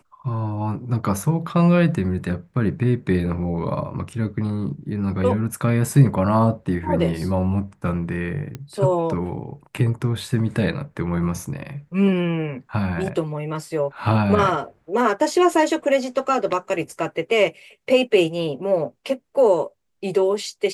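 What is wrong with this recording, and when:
8.55 pop -18 dBFS

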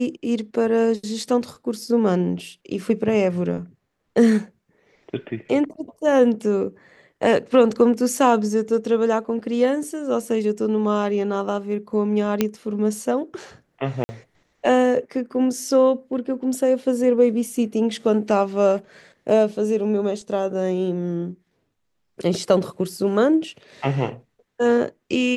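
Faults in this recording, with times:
12.41 pop -5 dBFS
14.04–14.09 gap 50 ms

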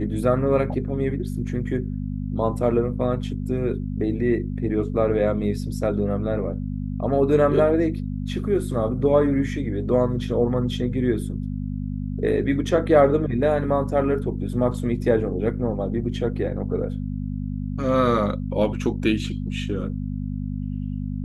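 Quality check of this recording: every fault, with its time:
hum 50 Hz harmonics 5 -28 dBFS

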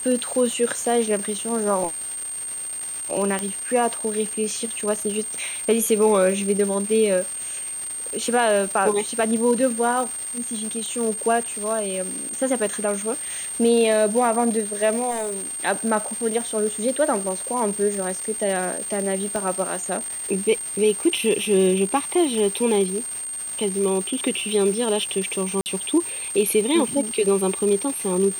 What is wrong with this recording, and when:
crackle 580/s -28 dBFS
tone 8700 Hz -28 dBFS
3.39 pop -11 dBFS
15.1–15.54 clipped -23 dBFS
19.36 pop
25.61–25.66 gap 49 ms

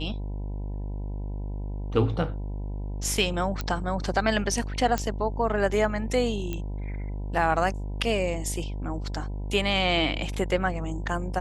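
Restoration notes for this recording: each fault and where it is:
buzz 50 Hz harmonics 20 -32 dBFS
3.61 pop -15 dBFS
4.98 pop -13 dBFS
6.53 pop -18 dBFS

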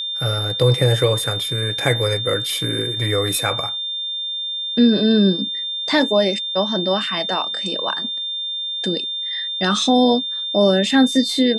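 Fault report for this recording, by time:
tone 3600 Hz -23 dBFS

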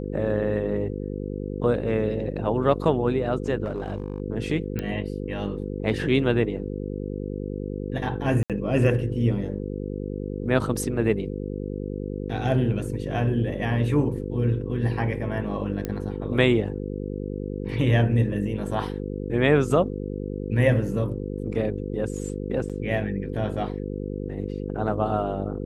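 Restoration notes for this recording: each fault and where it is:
buzz 50 Hz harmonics 10 -31 dBFS
3.64–4.2 clipped -23.5 dBFS
4.79 pop -15 dBFS
8.43–8.5 gap 67 ms
15.85 pop -15 dBFS
22.69–22.7 gap 7.1 ms

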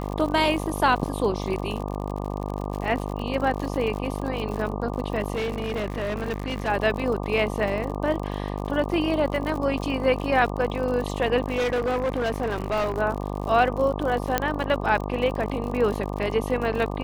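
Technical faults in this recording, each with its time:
buzz 50 Hz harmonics 24 -30 dBFS
crackle 66/s -30 dBFS
5.34–6.69 clipped -23.5 dBFS
11.48–12.98 clipped -21 dBFS
14.38 pop -6 dBFS

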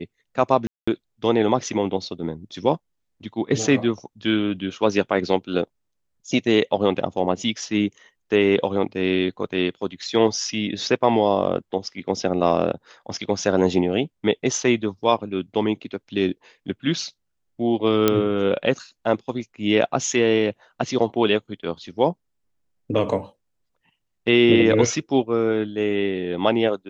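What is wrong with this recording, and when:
0.67–0.88 gap 0.205 s
18.08 pop -3 dBFS

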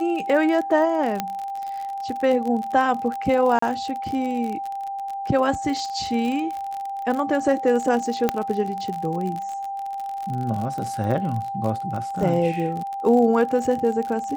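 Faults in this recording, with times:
crackle 46/s -27 dBFS
tone 790 Hz -27 dBFS
1.2 pop -9 dBFS
3.59–3.62 gap 34 ms
8.29 pop -7 dBFS

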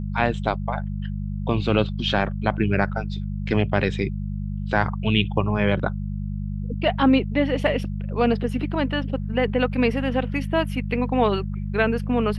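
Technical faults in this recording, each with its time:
hum 50 Hz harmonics 4 -28 dBFS

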